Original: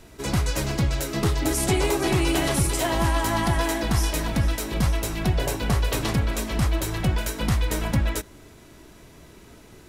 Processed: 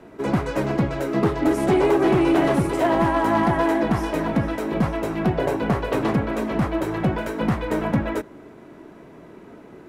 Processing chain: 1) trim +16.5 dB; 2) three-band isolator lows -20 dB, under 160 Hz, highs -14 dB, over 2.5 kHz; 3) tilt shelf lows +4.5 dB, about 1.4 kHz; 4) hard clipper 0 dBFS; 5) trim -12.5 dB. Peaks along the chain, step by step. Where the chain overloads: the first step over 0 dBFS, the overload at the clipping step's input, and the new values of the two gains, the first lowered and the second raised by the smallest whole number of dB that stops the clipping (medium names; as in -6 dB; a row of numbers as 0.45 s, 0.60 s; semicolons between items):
+5.0 dBFS, +3.5 dBFS, +7.0 dBFS, 0.0 dBFS, -12.5 dBFS; step 1, 7.0 dB; step 1 +9.5 dB, step 5 -5.5 dB